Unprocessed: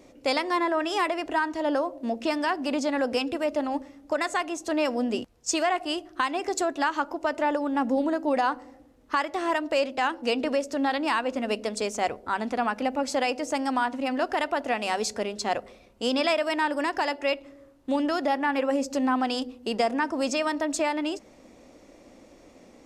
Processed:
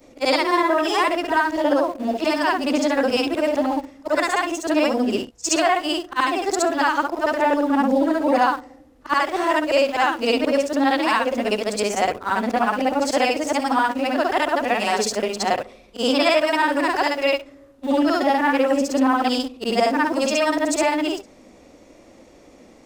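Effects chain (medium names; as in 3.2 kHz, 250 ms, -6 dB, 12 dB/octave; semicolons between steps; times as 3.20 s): short-time spectra conjugated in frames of 145 ms; in parallel at -8.5 dB: small samples zeroed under -37.5 dBFS; on the sum: trim +7 dB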